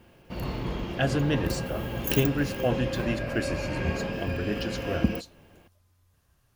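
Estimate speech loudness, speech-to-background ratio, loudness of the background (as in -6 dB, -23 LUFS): -31.0 LUFS, 1.0 dB, -32.0 LUFS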